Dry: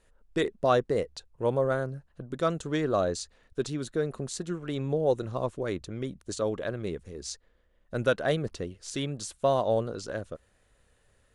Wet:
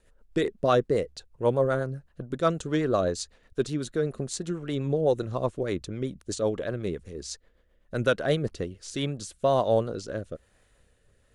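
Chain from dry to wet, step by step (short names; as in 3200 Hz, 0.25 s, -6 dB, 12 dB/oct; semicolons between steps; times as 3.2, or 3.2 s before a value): rotary speaker horn 8 Hz, later 1.1 Hz, at 8.35; gain +4 dB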